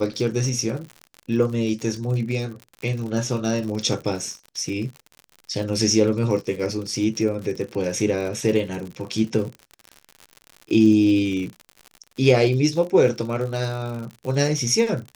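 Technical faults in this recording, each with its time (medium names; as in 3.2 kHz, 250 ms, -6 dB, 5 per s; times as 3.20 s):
crackle 77 per s -30 dBFS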